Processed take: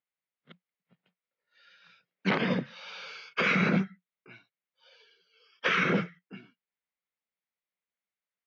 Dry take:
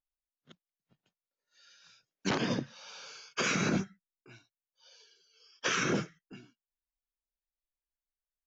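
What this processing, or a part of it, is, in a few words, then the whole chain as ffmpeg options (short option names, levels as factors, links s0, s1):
kitchen radio: -filter_complex "[0:a]asettb=1/sr,asplit=3[s0][s1][s2];[s0]atrim=end=2.654[s3];[s1]atrim=start=2.65:end=3.3,asetpts=PTS-STARTPTS,afade=t=in:d=0.004:c=qsin,afade=t=out:st=0.646:d=0.004:c=qsin,highshelf=f=3400:g=9.5[s4];[s2]atrim=start=3.296[s5];[s3][s4]acrossfade=d=0.004:c1=hsin:c2=qsin[s6];[s6][s5]acrossfade=d=0.004:c1=qsin:c2=hsin,highpass=160,equalizer=f=180:t=q:w=4:g=9,equalizer=f=310:t=q:w=4:g=-5,equalizer=f=500:t=q:w=4:g=4,equalizer=f=1300:t=q:w=4:g=3,equalizer=f=2100:t=q:w=4:g=8,lowpass=f=3800:w=0.5412,lowpass=f=3800:w=1.3066,volume=1.26"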